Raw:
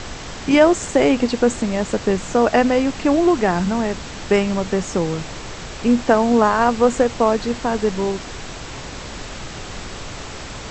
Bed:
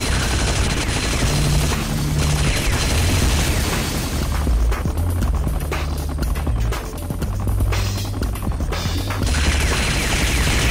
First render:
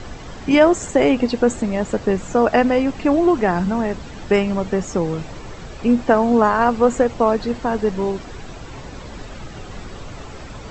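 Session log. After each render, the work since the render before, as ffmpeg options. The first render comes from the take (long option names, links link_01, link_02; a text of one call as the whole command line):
ffmpeg -i in.wav -af "afftdn=noise_reduction=10:noise_floor=-33" out.wav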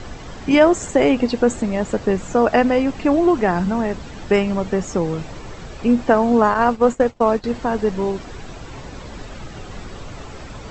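ffmpeg -i in.wav -filter_complex "[0:a]asettb=1/sr,asplit=3[link_01][link_02][link_03];[link_01]atrim=end=6.544[link_04];[link_02]atrim=start=6.54:end=7.44,asetpts=PTS-STARTPTS,afade=type=in:duration=0.004:curve=qsin,afade=type=out:start_time=0.896:duration=0.004:curve=qsin,agate=range=-33dB:threshold=-19dB:ratio=3:release=100:detection=peak[link_05];[link_03]atrim=start=7.436[link_06];[link_04][link_05]acrossfade=duration=0.004:curve1=hsin:curve2=qsin[link_07];[link_07][link_06]acrossfade=duration=0.004:curve1=qsin:curve2=hsin" out.wav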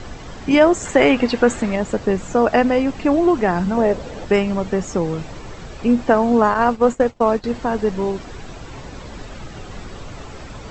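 ffmpeg -i in.wav -filter_complex "[0:a]asettb=1/sr,asplit=3[link_01][link_02][link_03];[link_01]atrim=end=0.854[link_04];[link_02]atrim=start=0.85:end=1.76,asetpts=PTS-STARTPTS,afade=type=in:duration=0.004:curve=qsin,afade=type=out:start_time=0.906:duration=0.004:curve=qsin,equalizer=frequency=1800:width_type=o:width=2.1:gain=7.5[link_05];[link_03]atrim=start=1.756[link_06];[link_04][link_05]acrossfade=duration=0.004:curve1=hsin:curve2=qsin[link_07];[link_07][link_06]acrossfade=duration=0.004:curve1=qsin:curve2=hsin,asettb=1/sr,asplit=3[link_08][link_09][link_10];[link_08]atrim=end=3.774[link_11];[link_09]atrim=start=3.77:end=4.25,asetpts=PTS-STARTPTS,afade=type=in:duration=0.004:curve=qsin,afade=type=out:start_time=0.476:duration=0.004:curve=qsin,equalizer=frequency=530:width_type=o:width=0.81:gain=12.5[link_12];[link_10]atrim=start=4.246[link_13];[link_11][link_12]acrossfade=duration=0.004:curve1=hsin:curve2=qsin[link_14];[link_14][link_13]acrossfade=duration=0.004:curve1=qsin:curve2=hsin" out.wav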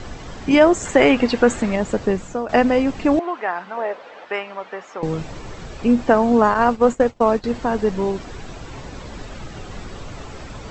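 ffmpeg -i in.wav -filter_complex "[0:a]asettb=1/sr,asplit=3[link_01][link_02][link_03];[link_01]atrim=end=3.194[link_04];[link_02]atrim=start=3.19:end=5.03,asetpts=PTS-STARTPTS,afade=type=in:duration=0.004:curve=qsin,afade=type=out:start_time=1.836:duration=0.004:curve=qsin,highpass=800,lowpass=2600[link_05];[link_03]atrim=start=5.026[link_06];[link_04][link_05]acrossfade=duration=0.004:curve1=hsin:curve2=qsin[link_07];[link_07][link_06]acrossfade=duration=0.004:curve1=qsin:curve2=hsin,asplit=2[link_08][link_09];[link_08]atrim=end=2.49,asetpts=PTS-STARTPTS,afade=type=out:start_time=2.05:duration=0.44:silence=0.188365[link_10];[link_09]atrim=start=2.49,asetpts=PTS-STARTPTS,afade=type=in:duration=0.004:curve=hsin:silence=0.188365[link_11];[link_10][link_11]concat=n=2:v=0:a=1" out.wav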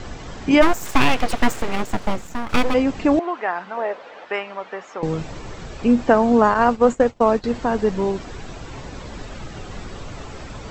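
ffmpeg -i in.wav -filter_complex "[0:a]asplit=3[link_01][link_02][link_03];[link_01]afade=type=out:start_time=0.61:duration=0.02[link_04];[link_02]aeval=exprs='abs(val(0))':channel_layout=same,afade=type=in:start_time=0.61:duration=0.02,afade=type=out:start_time=2.73:duration=0.02[link_05];[link_03]afade=type=in:start_time=2.73:duration=0.02[link_06];[link_04][link_05][link_06]amix=inputs=3:normalize=0" out.wav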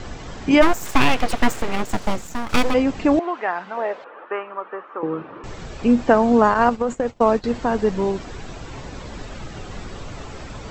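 ffmpeg -i in.wav -filter_complex "[0:a]asettb=1/sr,asplit=3[link_01][link_02][link_03];[link_01]atrim=end=1.894[link_04];[link_02]atrim=start=1.89:end=2.71,asetpts=PTS-STARTPTS,afade=type=in:duration=0.004:curve=qsin,afade=type=out:start_time=0.816:duration=0.004:curve=qsin,bass=frequency=250:gain=0,treble=frequency=4000:gain=5[link_05];[link_03]atrim=start=2.706[link_06];[link_04][link_05]acrossfade=duration=0.004:curve1=hsin:curve2=qsin[link_07];[link_07][link_06]acrossfade=duration=0.004:curve1=qsin:curve2=hsin,asettb=1/sr,asplit=3[link_08][link_09][link_10];[link_08]atrim=end=4.044[link_11];[link_09]atrim=start=4.04:end=5.44,asetpts=PTS-STARTPTS,afade=type=in:duration=0.004:curve=qsin,afade=type=out:start_time=1.396:duration=0.004:curve=qsin,highpass=290,equalizer=frequency=340:width_type=q:width=4:gain=5,equalizer=frequency=700:width_type=q:width=4:gain=-6,equalizer=frequency=1200:width_type=q:width=4:gain=7,equalizer=frequency=2100:width_type=q:width=4:gain=-9,lowpass=frequency=2300:width=0.5412,lowpass=frequency=2300:width=1.3066[link_12];[link_10]atrim=start=5.436[link_13];[link_11][link_12]acrossfade=duration=0.004:curve1=hsin:curve2=qsin[link_14];[link_14][link_13]acrossfade=duration=0.004:curve1=qsin:curve2=hsin,asettb=1/sr,asplit=3[link_15][link_16][link_17];[link_15]atrim=end=6.694[link_18];[link_16]atrim=start=6.69:end=7.11,asetpts=PTS-STARTPTS,afade=type=in:duration=0.004:curve=qsin,afade=type=out:start_time=0.416:duration=0.004:curve=qsin,acompressor=threshold=-16dB:ratio=10:attack=3.2:release=140:knee=1:detection=peak[link_19];[link_17]atrim=start=7.106[link_20];[link_18][link_19]acrossfade=duration=0.004:curve1=hsin:curve2=qsin[link_21];[link_21][link_20]acrossfade=duration=0.004:curve1=qsin:curve2=hsin" out.wav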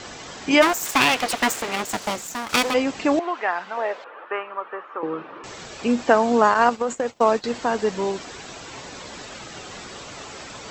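ffmpeg -i in.wav -af "highpass=frequency=390:poles=1,highshelf=frequency=3100:gain=7.5" out.wav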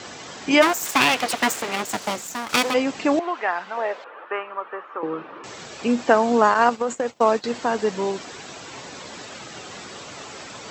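ffmpeg -i in.wav -af "highpass=96" out.wav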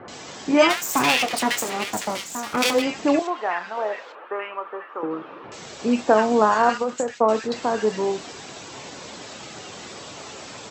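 ffmpeg -i in.wav -filter_complex "[0:a]asplit=2[link_01][link_02];[link_02]adelay=28,volume=-12dB[link_03];[link_01][link_03]amix=inputs=2:normalize=0,acrossover=split=1600[link_04][link_05];[link_05]adelay=80[link_06];[link_04][link_06]amix=inputs=2:normalize=0" out.wav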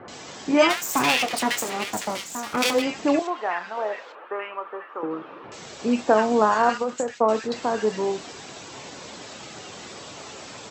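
ffmpeg -i in.wav -af "volume=-1.5dB" out.wav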